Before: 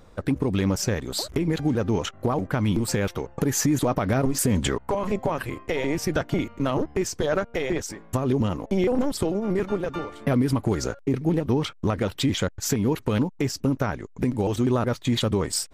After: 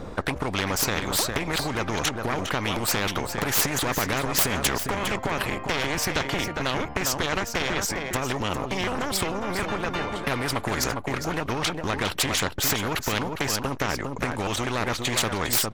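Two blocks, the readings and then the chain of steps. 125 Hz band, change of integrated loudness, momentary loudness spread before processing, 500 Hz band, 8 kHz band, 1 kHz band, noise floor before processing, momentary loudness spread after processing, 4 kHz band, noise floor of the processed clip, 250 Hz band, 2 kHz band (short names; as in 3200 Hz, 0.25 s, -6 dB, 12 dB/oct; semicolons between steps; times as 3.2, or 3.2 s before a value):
-5.5 dB, -0.5 dB, 5 LU, -3.5 dB, +3.5 dB, +4.0 dB, -49 dBFS, 5 LU, +6.0 dB, -35 dBFS, -6.5 dB, +7.5 dB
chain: self-modulated delay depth 0.066 ms; tilt -2 dB/oct; echo 0.406 s -11.5 dB; spectral compressor 4:1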